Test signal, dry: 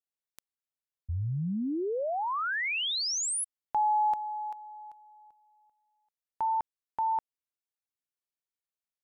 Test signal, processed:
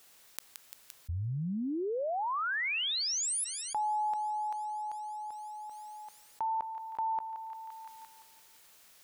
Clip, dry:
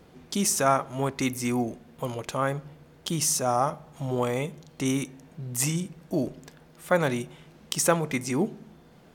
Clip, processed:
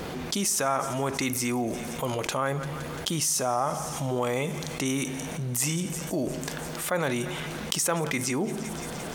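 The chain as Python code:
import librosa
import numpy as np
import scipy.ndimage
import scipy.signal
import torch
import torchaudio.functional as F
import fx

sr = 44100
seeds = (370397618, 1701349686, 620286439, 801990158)

p1 = fx.low_shelf(x, sr, hz=380.0, db=-5.5)
p2 = p1 + fx.echo_thinned(p1, sr, ms=172, feedback_pct=71, hz=1200.0, wet_db=-23.0, dry=0)
p3 = fx.env_flatten(p2, sr, amount_pct=70)
y = p3 * 10.0 ** (-5.0 / 20.0)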